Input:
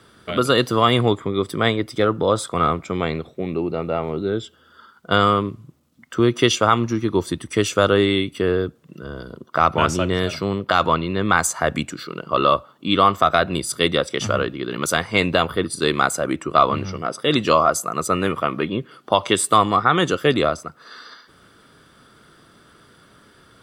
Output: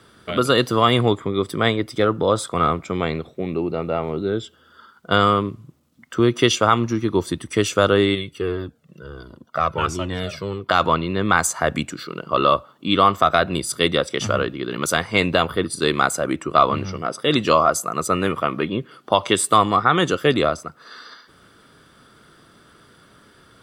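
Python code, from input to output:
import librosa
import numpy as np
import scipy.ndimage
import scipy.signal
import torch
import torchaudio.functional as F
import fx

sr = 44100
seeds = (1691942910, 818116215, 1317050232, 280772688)

y = fx.comb_cascade(x, sr, direction='falling', hz=1.4, at=(8.14, 10.68), fade=0.02)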